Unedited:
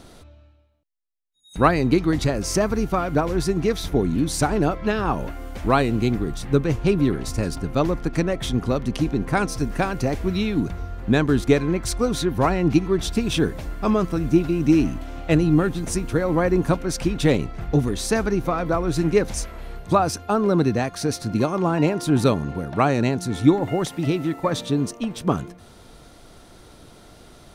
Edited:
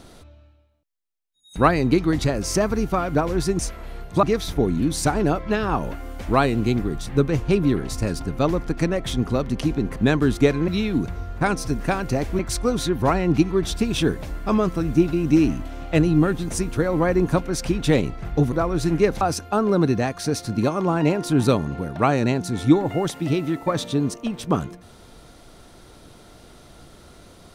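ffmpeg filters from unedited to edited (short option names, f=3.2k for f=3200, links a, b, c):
-filter_complex "[0:a]asplit=9[a][b][c][d][e][f][g][h][i];[a]atrim=end=3.592[j];[b]atrim=start=19.338:end=19.982[k];[c]atrim=start=3.588:end=9.322[l];[d]atrim=start=11.028:end=11.752[m];[e]atrim=start=10.298:end=11.032[n];[f]atrim=start=9.318:end=10.302[o];[g]atrim=start=11.748:end=17.882[p];[h]atrim=start=18.648:end=19.342[q];[i]atrim=start=19.978[r];[j][k]acrossfade=d=0.004:c1=hsin:c2=hsin[s];[s][l]acrossfade=d=0.004:c1=hsin:c2=hsin[t];[t][m]acrossfade=d=0.004:c1=hsin:c2=hsin[u];[u][n]acrossfade=d=0.004:c1=hsin:c2=hsin[v];[v][o]acrossfade=d=0.004:c1=hsin:c2=hsin[w];[w][p]acrossfade=d=0.004:c1=hsin:c2=hsin[x];[x][q]acrossfade=d=0.004:c1=hsin:c2=hsin[y];[y][r]acrossfade=d=0.004:c1=hsin:c2=hsin"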